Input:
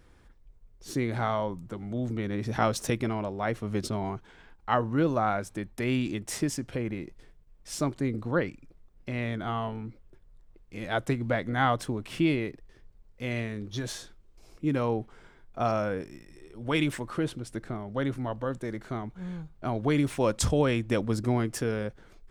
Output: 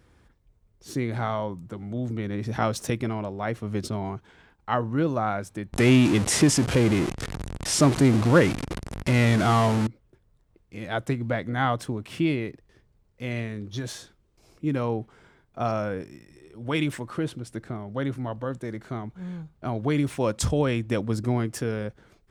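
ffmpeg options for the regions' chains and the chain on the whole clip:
-filter_complex "[0:a]asettb=1/sr,asplit=3[a][b][c];[a]atrim=end=5.734[d];[b]atrim=start=5.73:end=9.87,asetpts=PTS-STARTPTS,afade=t=in:d=0.004:c=qsin,afade=t=out:st=4.136:d=0.004:c=qsin,aeval=exprs='val(0)+0.5*0.0282*sgn(val(0))':c=same,lowpass=f=11k:w=0.5412,lowpass=f=11k:w=1.3066,acontrast=88[e];[c]atrim=start=9.866[f];[d][e]acrossfade=d=0.004:c1=hsin:c2=qsin[g];[g][f]acrossfade=d=0.004:c1=qsin:c2=hsin,highpass=71,lowshelf=f=120:g=6"

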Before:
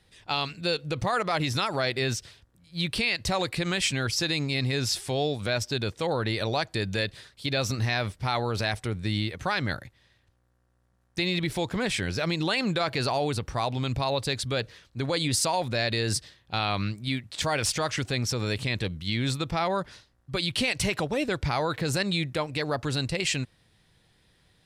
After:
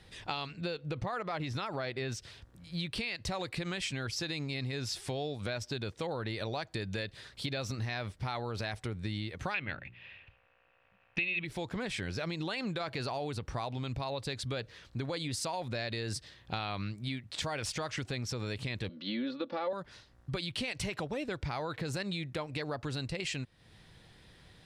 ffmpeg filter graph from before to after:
-filter_complex "[0:a]asettb=1/sr,asplit=3[a][b][c];[a]atrim=end=0.464[d];[b]atrim=start=0.46:end=2.12,asetpts=PTS-STARTPTS,afade=t=in:d=0.004:c=qsin,afade=t=out:st=1.656:d=0.004:c=qsin,aemphasis=mode=reproduction:type=cd,asoftclip=type=hard:threshold=-16dB[e];[c]atrim=start=2.116[f];[d][e]acrossfade=d=0.004:c1=hsin:c2=qsin[g];[g][f]acrossfade=d=0.004:c1=qsin:c2=hsin,asettb=1/sr,asplit=3[h][i][j];[h]atrim=end=9.544[k];[i]atrim=start=9.54:end=11.45,asetpts=PTS-STARTPTS,afade=t=in:d=0.004:c=qsin,afade=t=out:st=1.906:d=0.004:c=qsin,lowpass=f=2.6k:t=q:w=10,bandreject=f=60:t=h:w=6,bandreject=f=120:t=h:w=6,bandreject=f=180:t=h:w=6,bandreject=f=240:t=h:w=6,bandreject=f=300:t=h:w=6,bandreject=f=360:t=h:w=6,bandreject=f=420:t=h:w=6[l];[j]atrim=start=11.446[m];[k][l]acrossfade=d=0.004:c1=hsin:c2=qsin[n];[n][m]acrossfade=d=0.004:c1=qsin:c2=hsin,asettb=1/sr,asplit=3[o][p][q];[o]atrim=end=18.894[r];[p]atrim=start=18.89:end=19.73,asetpts=PTS-STARTPTS,afade=t=in:d=0.004:c=qsin,afade=t=out:st=0.836:d=0.004:c=qsin,acrossover=split=3200[s][t];[t]acompressor=threshold=-47dB:ratio=4:attack=1:release=60[u];[s][u]amix=inputs=2:normalize=0,highpass=f=220:w=0.5412,highpass=f=220:w=1.3066,equalizer=f=240:t=q:w=4:g=5,equalizer=f=530:t=q:w=4:g=10,equalizer=f=760:t=q:w=4:g=-4,equalizer=f=2.2k:t=q:w=4:g=-5,equalizer=f=4.2k:t=q:w=4:g=4,lowpass=f=4.8k:w=0.5412,lowpass=f=4.8k:w=1.3066,aecho=1:1:3.5:0.67,atrim=end_sample=37044[v];[q]atrim=start=19.726[w];[r][v]acrossfade=d=0.004:c1=hsin:c2=qsin[x];[x][w]acrossfade=d=0.004:c1=qsin:c2=hsin,highshelf=f=7.7k:g=-8.5,acompressor=threshold=-43dB:ratio=4,volume=6.5dB"

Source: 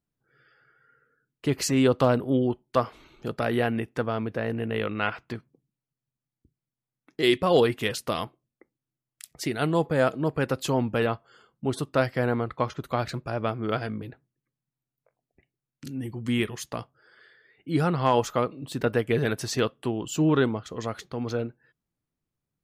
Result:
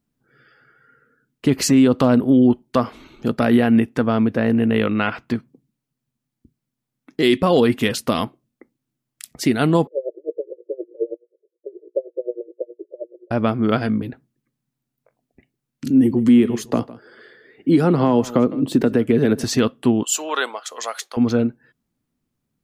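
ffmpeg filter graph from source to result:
-filter_complex "[0:a]asettb=1/sr,asplit=3[a][b][c];[a]atrim=end=9.874[d];[b]atrim=start=9.87:end=13.31,asetpts=PTS-STARTPTS,afade=t=in:d=0.004:c=qsin,afade=t=out:st=3.436:d=0.004:c=qsin,asuperpass=centerf=450:order=20:qfactor=1.6,bandreject=f=60:t=h:w=6,bandreject=f=120:t=h:w=6,bandreject=f=180:t=h:w=6,bandreject=f=240:t=h:w=6,bandreject=f=300:t=h:w=6,bandreject=f=360:t=h:w=6,bandreject=f=420:t=h:w=6,bandreject=f=480:t=h:w=6,aeval=exprs='val(0)*pow(10,-27*(0.5-0.5*cos(2*PI*9.5*n/s))/20)':c=same[e];[c]atrim=start=13.306[f];[d][e]acrossfade=d=0.004:c1=hsin:c2=qsin[g];[g][f]acrossfade=d=0.004:c1=qsin:c2=hsin,asettb=1/sr,asplit=3[h][i][j];[h]atrim=end=15.904[k];[i]atrim=start=15.9:end=19.44,asetpts=PTS-STARTPTS,afade=t=in:d=0.004:c=qsin,afade=t=out:st=3.536:d=0.004:c=qsin,equalizer=f=380:t=o:w=1.8:g=10,acrossover=split=240|1100[l][m][n];[l]acompressor=threshold=-29dB:ratio=4[o];[m]acompressor=threshold=-25dB:ratio=4[p];[n]acompressor=threshold=-37dB:ratio=4[q];[o][p][q]amix=inputs=3:normalize=0,aecho=1:1:157:0.106,atrim=end_sample=156114[r];[j]atrim=start=19.436[s];[k][r]acrossfade=d=0.004:c1=hsin:c2=qsin[t];[t][s]acrossfade=d=0.004:c1=qsin:c2=hsin,asettb=1/sr,asplit=3[u][v][w];[u]atrim=end=20.034[x];[v]atrim=start=20.03:end=21.17,asetpts=PTS-STARTPTS,afade=t=in:d=0.004:c=qsin,afade=t=out:st=1.136:d=0.004:c=qsin,highpass=f=600:w=0.5412,highpass=f=600:w=1.3066,equalizer=f=9.9k:w=0.58:g=11[y];[w]atrim=start=21.166[z];[x][y]acrossfade=d=0.004:c1=hsin:c2=qsin[aa];[aa][z]acrossfade=d=0.004:c1=qsin:c2=hsin,equalizer=f=240:w=2.5:g=9.5,alimiter=limit=-13dB:level=0:latency=1:release=86,volume=7dB"

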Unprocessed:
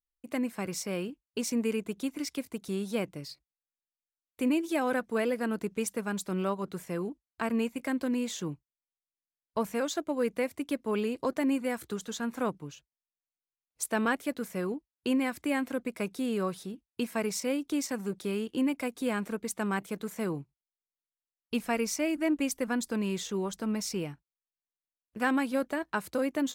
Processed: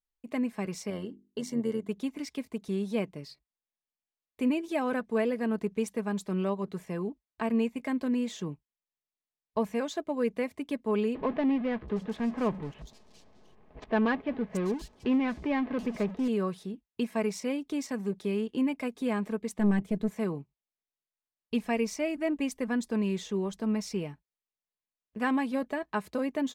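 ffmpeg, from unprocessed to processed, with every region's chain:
-filter_complex "[0:a]asettb=1/sr,asplit=3[a][b][c];[a]atrim=end=0.904[d];[b]atrim=start=0.9:end=1.89,asetpts=PTS-STARTPTS,afade=t=in:d=0.004:c=qsin,afade=t=out:st=0.986:d=0.004:c=qsin,asuperstop=centerf=2500:order=8:qfactor=5.6,bandreject=f=50:t=h:w=6,bandreject=f=100:t=h:w=6,bandreject=f=150:t=h:w=6,bandreject=f=200:t=h:w=6,bandreject=f=250:t=h:w=6,bandreject=f=300:t=h:w=6,bandreject=f=350:t=h:w=6,tremolo=f=89:d=0.571[e];[c]atrim=start=1.886[f];[d][e]acrossfade=d=0.004:c1=hsin:c2=qsin[g];[g][f]acrossfade=d=0.004:c1=qsin:c2=hsin,asettb=1/sr,asplit=3[h][i][j];[h]atrim=end=11.154[k];[i]atrim=start=11.15:end=16.28,asetpts=PTS-STARTPTS,afade=t=in:d=0.004:c=qsin,afade=t=out:st=5.126:d=0.004:c=qsin,aeval=exprs='val(0)+0.5*0.0168*sgn(val(0))':c=same,adynamicsmooth=sensitivity=7.5:basefreq=590,acrossover=split=4200[l][m];[m]adelay=730[n];[l][n]amix=inputs=2:normalize=0,atrim=end_sample=226233[o];[j]atrim=start=16.276[p];[k][o]acrossfade=d=0.004:c1=hsin:c2=qsin[q];[q][p]acrossfade=d=0.004:c1=qsin:c2=hsin,asettb=1/sr,asplit=3[r][s][t];[r]atrim=end=19.584[u];[s]atrim=start=19.58:end=20.12,asetpts=PTS-STARTPTS,afade=t=in:d=0.004:c=qsin,afade=t=out:st=0.536:d=0.004:c=qsin,equalizer=f=81:w=0.33:g=14.5,aeval=exprs='(tanh(8.91*val(0)+0.55)-tanh(0.55))/8.91':c=same[v];[t]atrim=start=20.116[w];[u][v]acrossfade=d=0.004:c1=hsin:c2=qsin[x];[x][w]acrossfade=d=0.004:c1=qsin:c2=hsin,lowpass=f=3k:p=1,bandreject=f=1.4k:w=5.7,aecho=1:1:4.7:0.34"

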